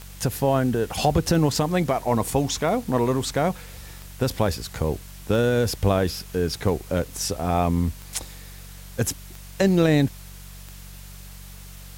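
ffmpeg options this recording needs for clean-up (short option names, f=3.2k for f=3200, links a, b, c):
-af "adeclick=t=4,bandreject=f=47.3:t=h:w=4,bandreject=f=94.6:t=h:w=4,bandreject=f=141.9:t=h:w=4,bandreject=f=189.2:t=h:w=4,afwtdn=0.005"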